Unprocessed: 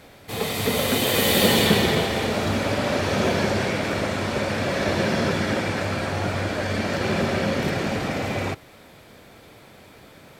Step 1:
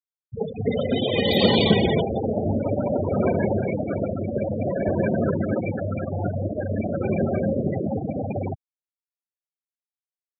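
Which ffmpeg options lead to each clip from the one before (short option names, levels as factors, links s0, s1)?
-af "bandreject=f=1800:w=19,afftfilt=real='re*gte(hypot(re,im),0.158)':imag='im*gte(hypot(re,im),0.158)':win_size=1024:overlap=0.75,volume=1.19"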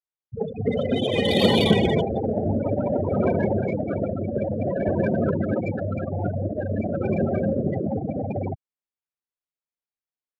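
-af "adynamicsmooth=sensitivity=2.5:basefreq=3700"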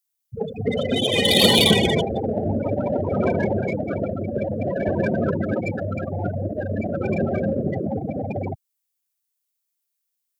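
-af "crystalizer=i=5:c=0"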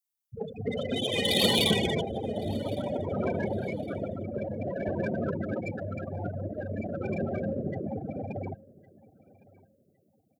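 -af "aecho=1:1:1110|2220:0.0708|0.0184,volume=0.376"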